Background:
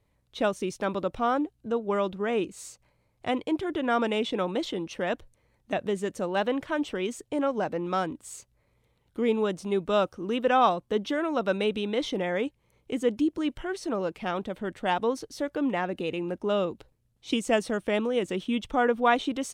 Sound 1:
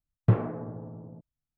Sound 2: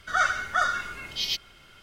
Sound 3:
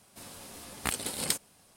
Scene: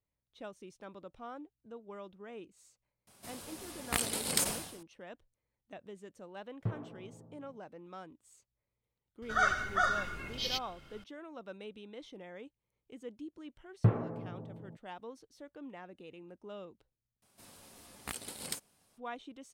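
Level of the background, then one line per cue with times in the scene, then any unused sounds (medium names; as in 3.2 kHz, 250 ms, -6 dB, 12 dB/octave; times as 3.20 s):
background -20 dB
3.07 s: add 3 -1.5 dB + decay stretcher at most 74 dB/s
6.37 s: add 1 -14.5 dB
9.22 s: add 2 -3 dB + tilt shelf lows +4.5 dB, about 780 Hz
13.56 s: add 1 -4.5 dB
17.22 s: replace with 3 -9.5 dB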